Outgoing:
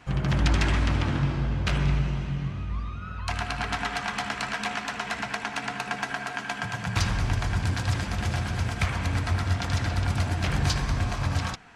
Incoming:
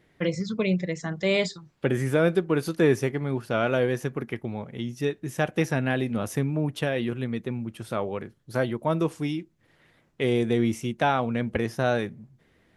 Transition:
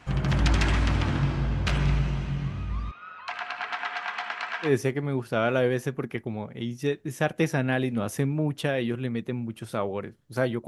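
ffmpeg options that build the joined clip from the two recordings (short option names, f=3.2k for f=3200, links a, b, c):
-filter_complex "[0:a]asettb=1/sr,asplit=3[a][b][c];[a]atrim=end=2.914[d];[b]atrim=start=2.91:end=4.74,asetpts=PTS-STARTPTS,afade=t=in:d=0.004:c=qsin,afade=t=out:st=1.826:d=0.004:c=qsin,highpass=750,lowpass=3.1k[e];[c]atrim=start=4.736[f];[d][e]acrossfade=d=0.004:c1=hsin:c2=qsin[g];[g][f]acrossfade=d=0.004:c1=qsin:c2=hsin,apad=whole_dur=10.67,atrim=end=10.67,atrim=end=4.74,asetpts=PTS-STARTPTS[h];[1:a]atrim=start=2.8:end=8.85,asetpts=PTS-STARTPTS[i];[h][i]acrossfade=d=0.12:c1=tri:c2=tri"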